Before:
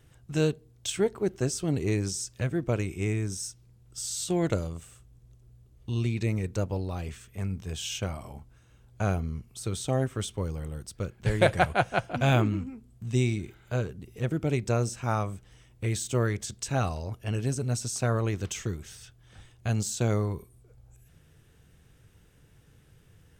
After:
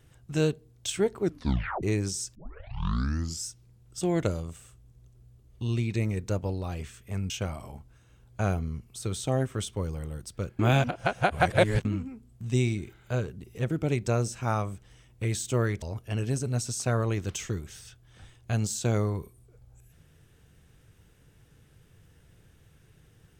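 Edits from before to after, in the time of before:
0:01.22: tape stop 0.61 s
0:02.35: tape start 1.12 s
0:04.01–0:04.28: remove
0:07.57–0:07.91: remove
0:11.20–0:12.46: reverse
0:16.43–0:16.98: remove

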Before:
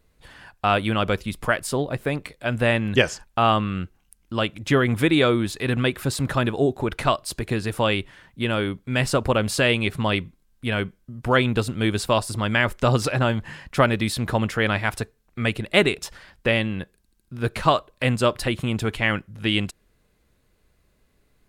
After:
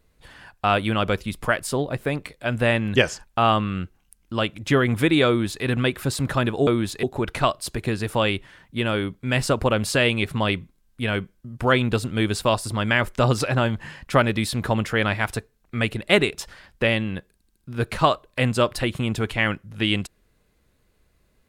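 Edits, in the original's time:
0:05.28–0:05.64: duplicate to 0:06.67

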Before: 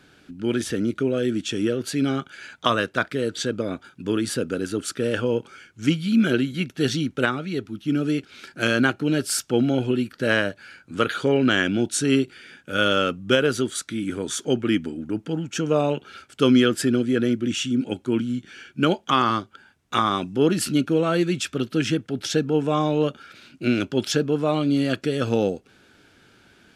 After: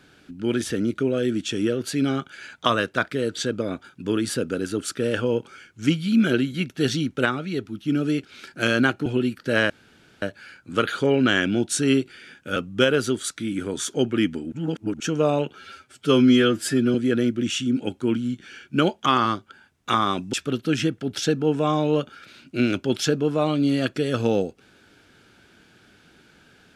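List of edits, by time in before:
0:09.06–0:09.80: remove
0:10.44: splice in room tone 0.52 s
0:12.78–0:13.07: remove
0:15.03–0:15.51: reverse
0:16.06–0:16.99: time-stretch 1.5×
0:20.38–0:21.41: remove

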